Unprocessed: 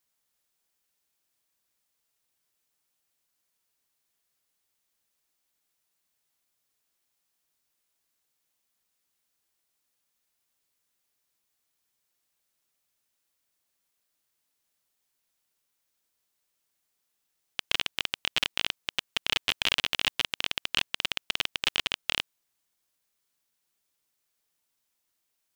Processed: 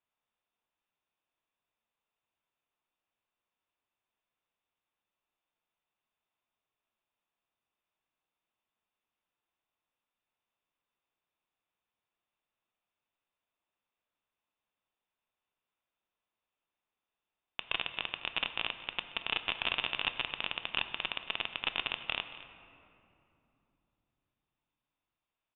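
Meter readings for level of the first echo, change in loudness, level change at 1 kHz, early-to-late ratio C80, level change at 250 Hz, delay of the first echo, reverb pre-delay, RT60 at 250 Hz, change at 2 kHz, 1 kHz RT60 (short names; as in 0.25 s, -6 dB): -17.5 dB, -6.0 dB, -1.5 dB, 10.5 dB, -4.5 dB, 0.227 s, 3 ms, 4.4 s, -4.0 dB, 2.8 s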